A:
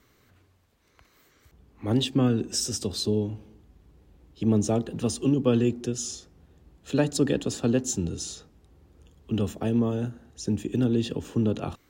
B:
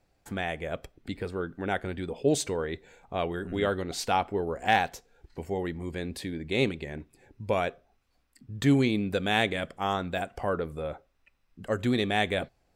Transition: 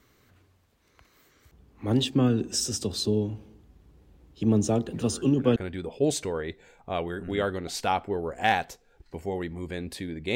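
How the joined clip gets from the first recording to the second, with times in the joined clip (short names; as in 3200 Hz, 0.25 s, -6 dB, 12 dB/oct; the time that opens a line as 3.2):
A
4.89 add B from 1.13 s 0.67 s -12.5 dB
5.56 switch to B from 1.8 s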